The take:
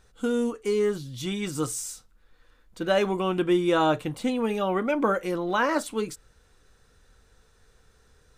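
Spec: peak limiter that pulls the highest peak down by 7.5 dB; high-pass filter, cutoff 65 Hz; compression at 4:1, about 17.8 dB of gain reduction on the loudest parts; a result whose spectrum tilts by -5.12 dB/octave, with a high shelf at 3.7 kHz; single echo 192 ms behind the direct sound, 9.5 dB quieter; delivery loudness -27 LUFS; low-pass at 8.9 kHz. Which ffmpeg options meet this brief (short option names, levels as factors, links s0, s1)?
-af "highpass=65,lowpass=8900,highshelf=f=3700:g=-7.5,acompressor=threshold=0.00891:ratio=4,alimiter=level_in=3.98:limit=0.0631:level=0:latency=1,volume=0.251,aecho=1:1:192:0.335,volume=7.5"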